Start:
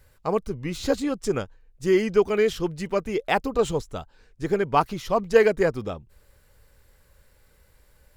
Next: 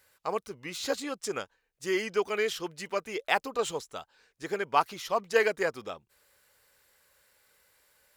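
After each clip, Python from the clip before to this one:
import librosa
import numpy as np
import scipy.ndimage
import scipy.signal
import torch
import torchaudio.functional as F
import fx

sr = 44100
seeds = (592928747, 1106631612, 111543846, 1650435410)

y = fx.highpass(x, sr, hz=1100.0, slope=6)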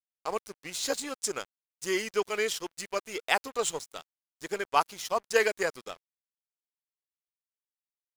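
y = fx.peak_eq(x, sr, hz=8500.0, db=9.5, octaves=1.6)
y = np.sign(y) * np.maximum(np.abs(y) - 10.0 ** (-43.0 / 20.0), 0.0)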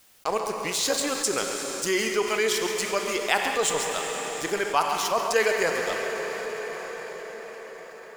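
y = x + 10.0 ** (-13.5 / 20.0) * np.pad(x, (int(136 * sr / 1000.0), 0))[:len(x)]
y = fx.rev_plate(y, sr, seeds[0], rt60_s=4.2, hf_ratio=0.9, predelay_ms=0, drr_db=7.0)
y = fx.env_flatten(y, sr, amount_pct=50)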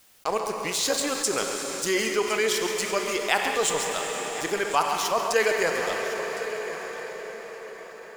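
y = x + 10.0 ** (-15.5 / 20.0) * np.pad(x, (int(1060 * sr / 1000.0), 0))[:len(x)]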